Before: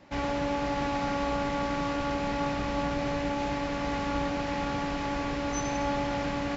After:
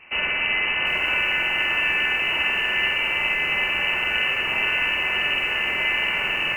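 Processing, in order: flutter echo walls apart 8 m, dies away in 0.54 s; frequency inversion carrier 2.9 kHz; bit-crushed delay 751 ms, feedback 35%, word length 8-bit, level -10.5 dB; trim +6.5 dB

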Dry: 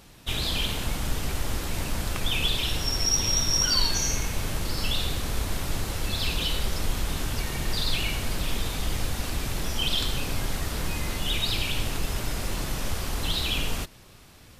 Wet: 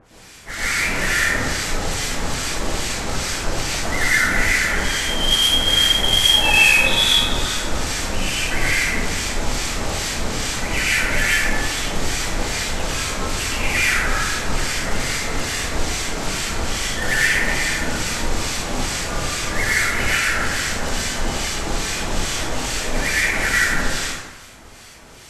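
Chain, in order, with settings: tilt EQ +1.5 dB/octave; companded quantiser 4-bit; harmonic tremolo 4.1 Hz, depth 100%, crossover 2.3 kHz; speed mistake 78 rpm record played at 45 rpm; plate-style reverb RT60 1.2 s, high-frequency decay 0.55×, pre-delay 95 ms, DRR -8.5 dB; trim +3.5 dB

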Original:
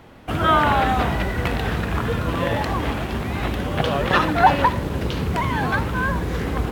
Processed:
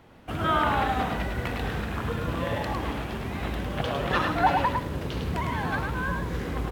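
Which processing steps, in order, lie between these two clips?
delay 105 ms -4.5 dB; trim -8 dB

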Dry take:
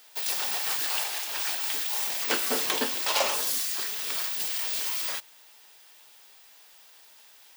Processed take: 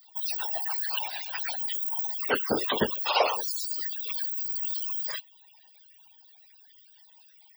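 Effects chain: loudest bins only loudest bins 32; whisper effect; trim +5.5 dB

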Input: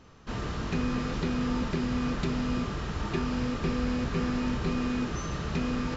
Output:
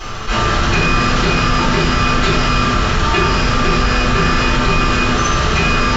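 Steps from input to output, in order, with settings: tilt shelf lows -5.5 dB, about 710 Hz; de-hum 61.53 Hz, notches 36; reverberation RT60 0.60 s, pre-delay 4 ms, DRR -9.5 dB; level flattener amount 50%; trim +1 dB

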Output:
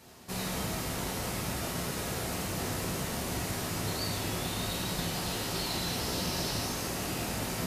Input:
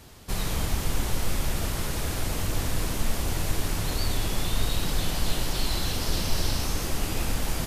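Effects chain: high-pass 120 Hz 12 dB/octave; peaking EQ 3.3 kHz -3 dB 0.23 oct; simulated room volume 180 m³, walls mixed, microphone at 1 m; trim -5 dB

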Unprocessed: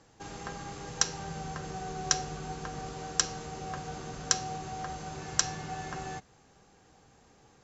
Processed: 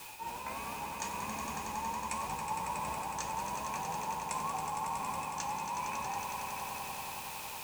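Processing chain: sawtooth pitch modulation +7 st, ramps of 756 ms; in parallel at -9 dB: word length cut 6-bit, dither triangular; on the sum: small resonant body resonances 900/2500 Hz, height 16 dB, ringing for 20 ms; reverse; compression, threshold -34 dBFS, peak gain reduction 17 dB; reverse; vibrato 5.6 Hz 25 cents; flange 0.83 Hz, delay 7.7 ms, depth 9 ms, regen +67%; echo with a slow build-up 92 ms, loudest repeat 5, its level -8 dB

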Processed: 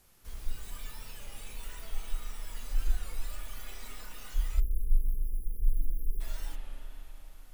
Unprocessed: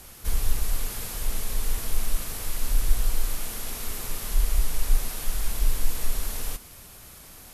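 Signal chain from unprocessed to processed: tracing distortion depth 0.056 ms; spectral noise reduction 13 dB; spring tank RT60 4 s, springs 32/42 ms, chirp 35 ms, DRR 1.5 dB; spectral selection erased 4.60–6.21 s, 500–10000 Hz; warped record 33 1/3 rpm, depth 100 cents; trim -4.5 dB

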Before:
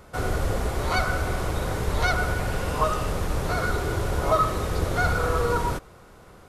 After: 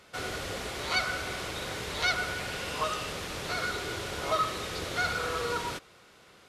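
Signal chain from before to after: frequency weighting D; trim -8 dB

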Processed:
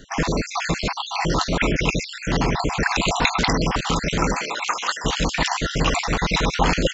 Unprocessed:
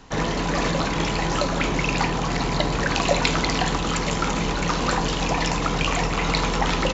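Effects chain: random holes in the spectrogram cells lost 50%; 4.33–5.04 s: high-pass 520 Hz -> 1.4 kHz 12 dB/octave; trim +4.5 dB

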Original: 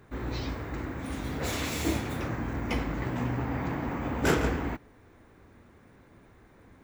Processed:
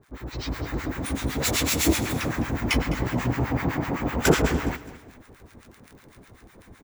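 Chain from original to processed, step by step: treble shelf 3.7 kHz +9 dB; crackle 38 per s -42 dBFS; harmonic tremolo 7.9 Hz, depth 100%, crossover 960 Hz; feedback delay 207 ms, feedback 38%, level -16.5 dB; level rider gain up to 9.5 dB

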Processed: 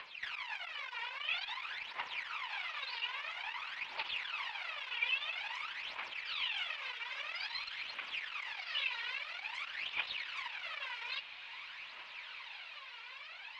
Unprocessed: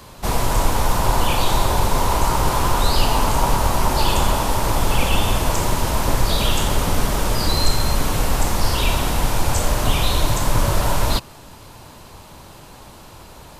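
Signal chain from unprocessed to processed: reverb removal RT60 0.71 s; compression 3:1, threshold -28 dBFS, peak gain reduction 13.5 dB; saturation -27 dBFS, distortion -12 dB; ladder band-pass 2.8 kHz, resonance 50%; phaser 0.5 Hz, delay 2.2 ms, feedback 76%; distance through air 330 m; echo that smears into a reverb 1393 ms, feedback 42%, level -10 dB; trim +13.5 dB

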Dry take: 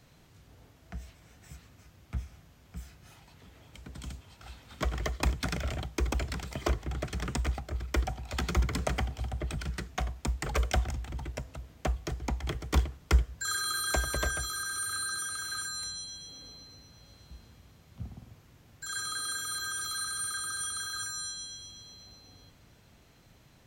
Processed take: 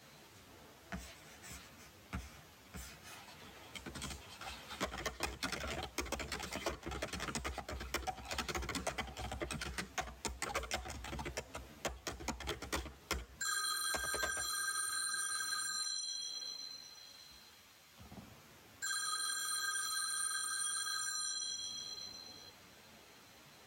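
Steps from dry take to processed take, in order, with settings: high-pass 370 Hz 6 dB/octave, from 15.81 s 1.4 kHz, from 18.11 s 470 Hz; compression 3:1, threshold -44 dBFS, peak gain reduction 14 dB; three-phase chorus; trim +8 dB

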